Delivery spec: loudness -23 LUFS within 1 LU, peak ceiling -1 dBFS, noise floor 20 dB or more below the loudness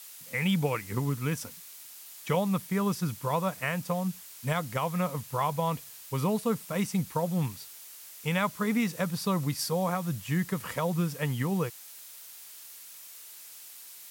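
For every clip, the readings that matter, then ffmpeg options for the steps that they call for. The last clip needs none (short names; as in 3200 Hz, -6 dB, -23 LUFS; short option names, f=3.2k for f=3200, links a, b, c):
noise floor -48 dBFS; noise floor target -51 dBFS; loudness -30.5 LUFS; peak -14.5 dBFS; loudness target -23.0 LUFS
-> -af "afftdn=nr=6:nf=-48"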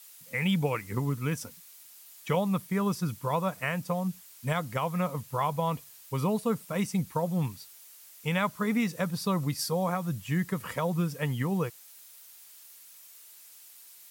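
noise floor -52 dBFS; loudness -30.5 LUFS; peak -15.0 dBFS; loudness target -23.0 LUFS
-> -af "volume=7.5dB"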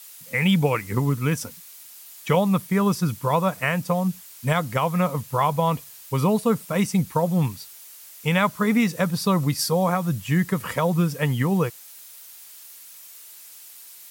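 loudness -23.0 LUFS; peak -7.5 dBFS; noise floor -45 dBFS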